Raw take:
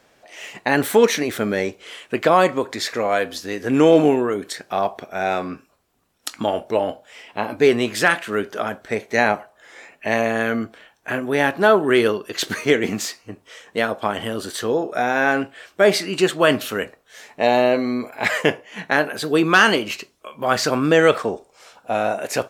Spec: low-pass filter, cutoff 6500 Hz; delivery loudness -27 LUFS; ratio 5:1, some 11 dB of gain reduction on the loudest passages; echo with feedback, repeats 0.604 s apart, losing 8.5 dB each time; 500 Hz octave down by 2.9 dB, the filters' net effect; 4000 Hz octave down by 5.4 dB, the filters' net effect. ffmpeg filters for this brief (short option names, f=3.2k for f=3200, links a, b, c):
-af "lowpass=6.5k,equalizer=f=500:t=o:g=-3.5,equalizer=f=4k:t=o:g=-7,acompressor=threshold=-24dB:ratio=5,aecho=1:1:604|1208|1812|2416:0.376|0.143|0.0543|0.0206,volume=2.5dB"